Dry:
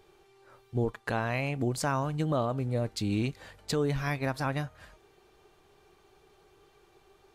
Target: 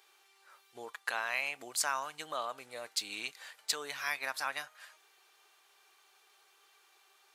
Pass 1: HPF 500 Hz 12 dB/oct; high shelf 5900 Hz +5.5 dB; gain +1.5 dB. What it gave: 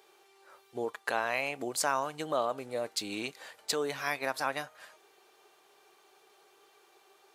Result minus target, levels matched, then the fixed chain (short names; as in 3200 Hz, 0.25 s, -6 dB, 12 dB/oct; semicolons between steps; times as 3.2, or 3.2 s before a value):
500 Hz band +8.5 dB
HPF 1200 Hz 12 dB/oct; high shelf 5900 Hz +5.5 dB; gain +1.5 dB